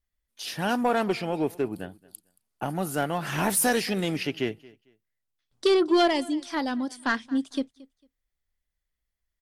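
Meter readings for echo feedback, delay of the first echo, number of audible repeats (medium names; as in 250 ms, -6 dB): 24%, 225 ms, 2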